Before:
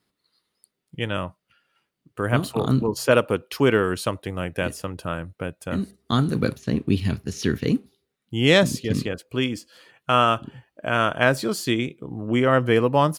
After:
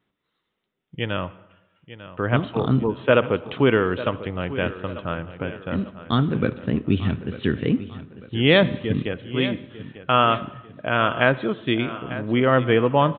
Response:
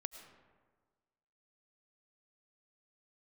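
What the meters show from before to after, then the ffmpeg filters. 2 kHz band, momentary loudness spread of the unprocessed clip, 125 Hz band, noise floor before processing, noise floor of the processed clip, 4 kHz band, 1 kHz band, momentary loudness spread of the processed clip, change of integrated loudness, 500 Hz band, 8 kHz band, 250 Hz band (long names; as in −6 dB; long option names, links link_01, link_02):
+0.5 dB, 13 LU, +0.5 dB, −80 dBFS, −78 dBFS, 0.0 dB, +0.5 dB, 13 LU, +0.5 dB, +0.5 dB, below −40 dB, +0.5 dB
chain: -filter_complex "[0:a]asplit=2[link_01][link_02];[link_02]aecho=0:1:896|1792|2688|3584:0.188|0.0753|0.0301|0.0121[link_03];[link_01][link_03]amix=inputs=2:normalize=0,aresample=8000,aresample=44100,asplit=2[link_04][link_05];[1:a]atrim=start_sample=2205,asetrate=70560,aresample=44100[link_06];[link_05][link_06]afir=irnorm=-1:irlink=0,volume=0dB[link_07];[link_04][link_07]amix=inputs=2:normalize=0,volume=-2.5dB"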